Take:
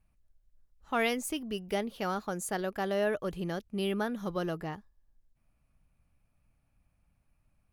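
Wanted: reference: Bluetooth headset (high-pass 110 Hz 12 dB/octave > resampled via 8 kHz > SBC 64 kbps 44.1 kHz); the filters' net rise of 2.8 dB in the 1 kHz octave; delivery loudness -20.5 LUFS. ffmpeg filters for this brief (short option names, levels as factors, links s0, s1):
-af "highpass=110,equalizer=f=1000:t=o:g=4,aresample=8000,aresample=44100,volume=3.98" -ar 44100 -c:a sbc -b:a 64k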